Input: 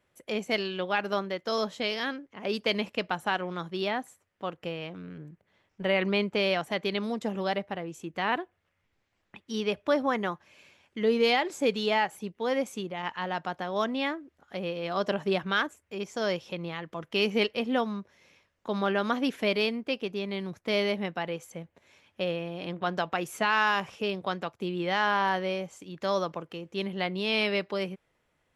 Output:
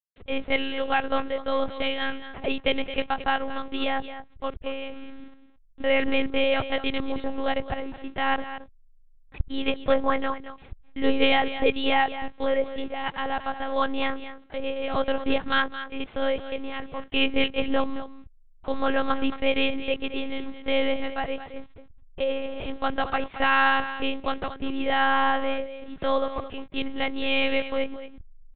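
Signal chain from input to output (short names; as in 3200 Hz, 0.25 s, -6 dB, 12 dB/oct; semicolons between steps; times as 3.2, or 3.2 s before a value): level-crossing sampler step -45 dBFS; on a send: echo 0.221 s -12 dB; on the sum: monotone LPC vocoder at 8 kHz 270 Hz; gain +4.5 dB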